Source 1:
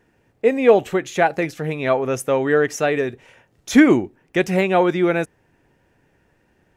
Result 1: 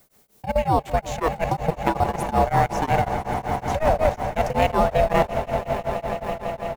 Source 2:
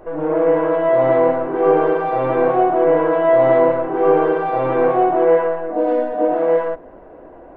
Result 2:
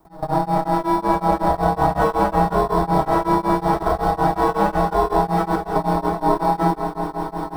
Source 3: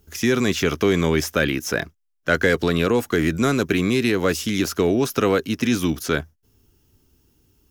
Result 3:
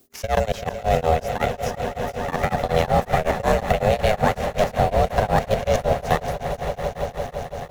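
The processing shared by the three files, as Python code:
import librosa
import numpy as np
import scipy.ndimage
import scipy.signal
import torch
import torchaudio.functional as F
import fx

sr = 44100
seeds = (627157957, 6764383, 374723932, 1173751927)

p1 = fx.reverse_delay_fb(x, sr, ms=561, feedback_pct=40, wet_db=-10.0)
p2 = fx.sample_hold(p1, sr, seeds[0], rate_hz=4500.0, jitter_pct=0)
p3 = p1 + F.gain(torch.from_numpy(p2), -10.0).numpy()
p4 = p3 * np.sin(2.0 * np.pi * 320.0 * np.arange(len(p3)) / sr)
p5 = fx.dynamic_eq(p4, sr, hz=580.0, q=0.84, threshold_db=-27.0, ratio=4.0, max_db=5)
p6 = fx.vibrato(p5, sr, rate_hz=0.36, depth_cents=8.9)
p7 = fx.dmg_noise_colour(p6, sr, seeds[1], colour='blue', level_db=-58.0)
p8 = fx.level_steps(p7, sr, step_db=20)
p9 = p8 + fx.echo_swell(p8, sr, ms=167, loudest=5, wet_db=-14.0, dry=0)
p10 = p9 * np.abs(np.cos(np.pi * 5.4 * np.arange(len(p9)) / sr))
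y = F.gain(torch.from_numpy(p10), 3.5).numpy()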